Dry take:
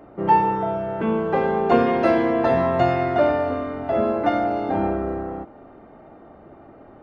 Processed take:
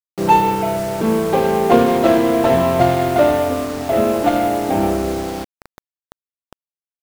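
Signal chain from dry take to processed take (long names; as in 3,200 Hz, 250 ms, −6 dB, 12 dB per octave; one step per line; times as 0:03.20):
running median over 25 samples
bit-depth reduction 6 bits, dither none
level +5.5 dB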